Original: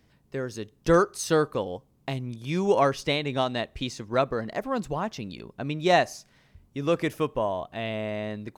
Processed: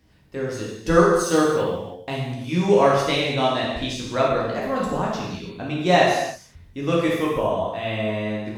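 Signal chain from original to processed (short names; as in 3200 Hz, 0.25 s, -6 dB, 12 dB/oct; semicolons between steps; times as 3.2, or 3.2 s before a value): 1.15–1.7 G.711 law mismatch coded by A; non-linear reverb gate 0.36 s falling, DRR -5.5 dB; gain -1 dB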